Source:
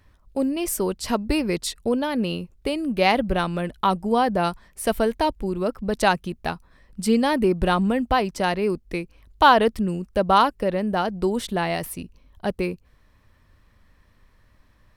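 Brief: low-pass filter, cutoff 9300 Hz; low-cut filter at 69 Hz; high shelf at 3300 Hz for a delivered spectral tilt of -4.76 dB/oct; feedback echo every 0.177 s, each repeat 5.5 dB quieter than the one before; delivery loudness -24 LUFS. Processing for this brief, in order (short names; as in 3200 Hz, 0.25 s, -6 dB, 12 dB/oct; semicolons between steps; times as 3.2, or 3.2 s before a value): HPF 69 Hz; LPF 9300 Hz; high shelf 3300 Hz -9 dB; feedback echo 0.177 s, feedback 53%, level -5.5 dB; gain -1.5 dB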